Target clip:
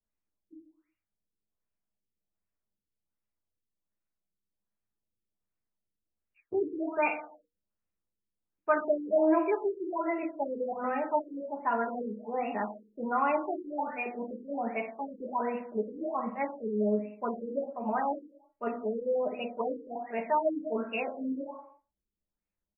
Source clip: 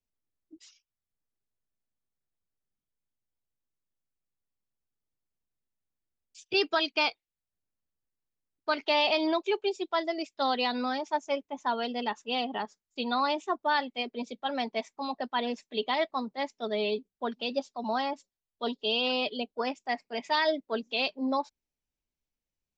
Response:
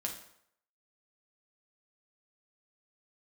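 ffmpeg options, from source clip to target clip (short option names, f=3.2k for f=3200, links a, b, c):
-filter_complex "[0:a]aecho=1:1:112:0.0668[a];[1:a]atrim=start_sample=2205,afade=t=out:st=0.44:d=0.01,atrim=end_sample=19845[b];[a][b]afir=irnorm=-1:irlink=0,afftfilt=real='re*lt(b*sr/1024,500*pow(2900/500,0.5+0.5*sin(2*PI*1.3*pts/sr)))':imag='im*lt(b*sr/1024,500*pow(2900/500,0.5+0.5*sin(2*PI*1.3*pts/sr)))':win_size=1024:overlap=0.75"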